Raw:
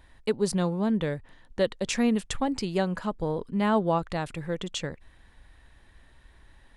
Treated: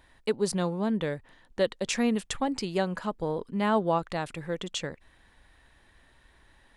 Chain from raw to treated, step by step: low shelf 150 Hz -8 dB

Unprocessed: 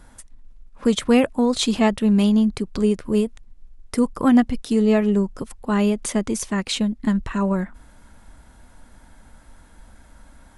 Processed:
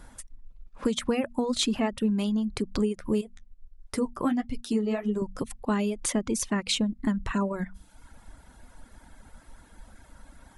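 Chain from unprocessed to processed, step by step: 3.21–5.22 flange 1.5 Hz, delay 7 ms, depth 8.9 ms, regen -41%; compressor 5:1, threshold -22 dBFS, peak gain reduction 10.5 dB; de-hum 47.6 Hz, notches 5; reverb removal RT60 0.8 s

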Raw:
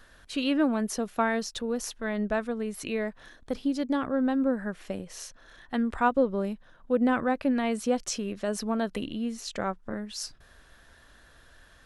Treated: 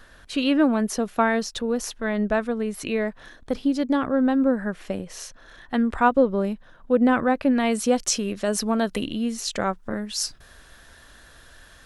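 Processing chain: high shelf 4000 Hz -2.5 dB, from 7.6 s +5.5 dB; gain +5.5 dB

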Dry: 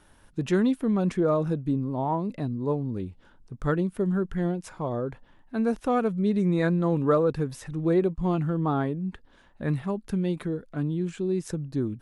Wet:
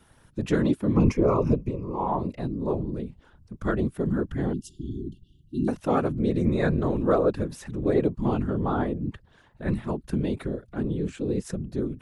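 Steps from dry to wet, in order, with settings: 0.96–2.08 ripple EQ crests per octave 0.8, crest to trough 15 dB; whisperiser; 4.53–5.68 brick-wall FIR band-stop 400–2700 Hz

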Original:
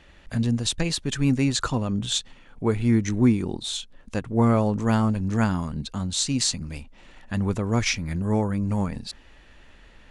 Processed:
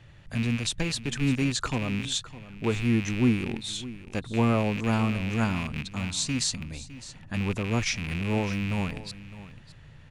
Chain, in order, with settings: rattling part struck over -30 dBFS, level -20 dBFS; band noise 78–160 Hz -48 dBFS; echo 0.608 s -16 dB; gain -4 dB

